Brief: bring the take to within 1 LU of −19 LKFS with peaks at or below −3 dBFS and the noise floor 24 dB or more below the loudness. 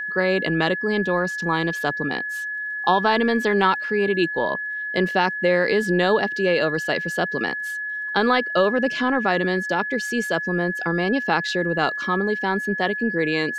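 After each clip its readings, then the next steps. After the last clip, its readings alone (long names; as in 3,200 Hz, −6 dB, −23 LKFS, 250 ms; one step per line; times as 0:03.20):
crackle rate 37 per second; interfering tone 1,700 Hz; level of the tone −26 dBFS; integrated loudness −22.0 LKFS; sample peak −5.0 dBFS; target loudness −19.0 LKFS
→ click removal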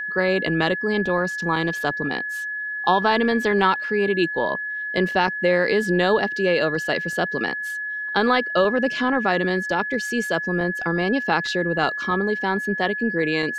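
crackle rate 0.15 per second; interfering tone 1,700 Hz; level of the tone −26 dBFS
→ notch filter 1,700 Hz, Q 30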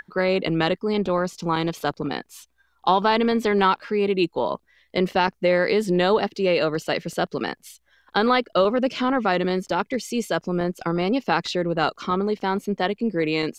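interfering tone none found; integrated loudness −23.0 LKFS; sample peak −5.5 dBFS; target loudness −19.0 LKFS
→ level +4 dB
brickwall limiter −3 dBFS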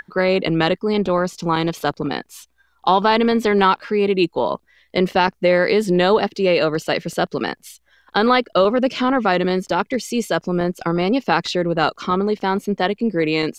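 integrated loudness −19.0 LKFS; sample peak −3.0 dBFS; background noise floor −63 dBFS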